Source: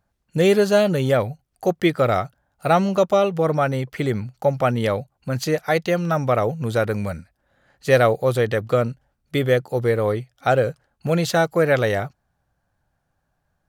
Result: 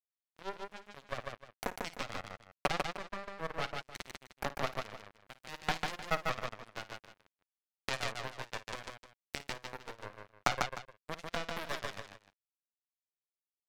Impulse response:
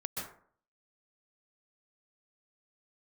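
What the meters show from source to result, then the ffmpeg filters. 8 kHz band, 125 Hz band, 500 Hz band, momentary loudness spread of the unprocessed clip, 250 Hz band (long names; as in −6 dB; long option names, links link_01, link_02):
−11.0 dB, −25.5 dB, −25.0 dB, 10 LU, −25.0 dB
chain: -filter_complex "[0:a]acrossover=split=3000[link_01][link_02];[link_02]acompressor=threshold=-40dB:ratio=4:attack=1:release=60[link_03];[link_01][link_03]amix=inputs=2:normalize=0,highpass=frequency=51:width=0.5412,highpass=frequency=51:width=1.3066,aeval=exprs='0.708*(cos(1*acos(clip(val(0)/0.708,-1,1)))-cos(1*PI/2))+0.0891*(cos(6*acos(clip(val(0)/0.708,-1,1)))-cos(6*PI/2))+0.00447*(cos(8*acos(clip(val(0)/0.708,-1,1)))-cos(8*PI/2))':channel_layout=same,equalizer=frequency=200:width=5:gain=10.5,asplit=2[link_04][link_05];[link_05]alimiter=limit=-11dB:level=0:latency=1:release=130,volume=-2dB[link_06];[link_04][link_06]amix=inputs=2:normalize=0,acompressor=threshold=-23dB:ratio=16,asubboost=boost=11:cutoff=77,acrossover=split=510[link_07][link_08];[link_07]asoftclip=type=tanh:threshold=-30dB[link_09];[link_09][link_08]amix=inputs=2:normalize=0,flanger=delay=4.3:depth=1.2:regen=49:speed=0.62:shape=sinusoidal,acrusher=bits=3:mix=0:aa=0.5,aecho=1:1:54|146|305:0.178|0.668|0.178,volume=4.5dB"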